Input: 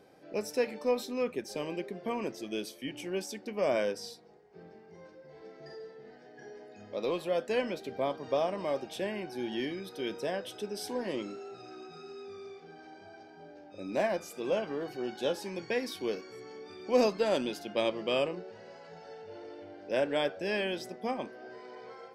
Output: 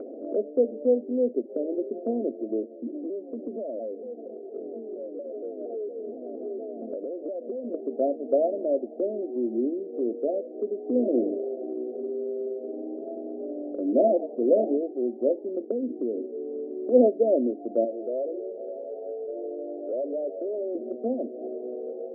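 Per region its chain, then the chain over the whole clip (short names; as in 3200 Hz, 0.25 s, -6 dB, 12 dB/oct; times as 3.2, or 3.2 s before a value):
2.63–7.74 compressor 12:1, threshold -41 dBFS + shaped vibrato saw down 4.3 Hz, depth 160 cents
10.88–14.77 low shelf 340 Hz +8 dB + frequency-shifting echo 88 ms, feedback 50%, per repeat +120 Hz, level -10.5 dB
15.71–16.26 tilt -4 dB/oct + compressor 4:1, threshold -34 dBFS
17.84–20.75 Butterworth band-pass 730 Hz, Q 0.58 + core saturation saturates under 3300 Hz
whole clip: Chebyshev band-pass 230–680 Hz, order 5; low shelf 360 Hz +6 dB; upward compressor, threshold -32 dBFS; gain +6 dB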